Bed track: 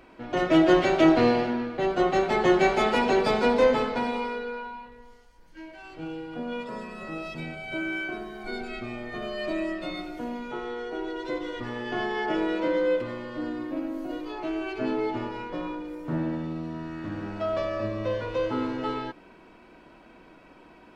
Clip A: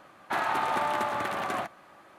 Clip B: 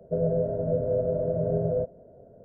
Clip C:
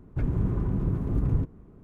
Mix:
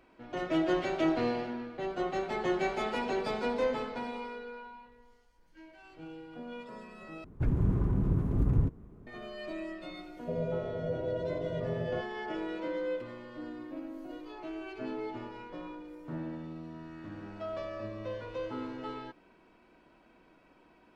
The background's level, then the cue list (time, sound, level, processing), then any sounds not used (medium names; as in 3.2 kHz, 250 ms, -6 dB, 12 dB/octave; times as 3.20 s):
bed track -10 dB
7.24 s: replace with C -1.5 dB
10.16 s: add B -8.5 dB
not used: A